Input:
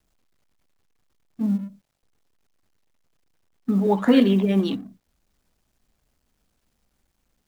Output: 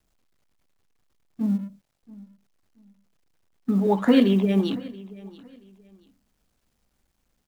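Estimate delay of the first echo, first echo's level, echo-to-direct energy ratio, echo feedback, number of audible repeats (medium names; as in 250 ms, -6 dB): 679 ms, -20.5 dB, -20.0 dB, 26%, 2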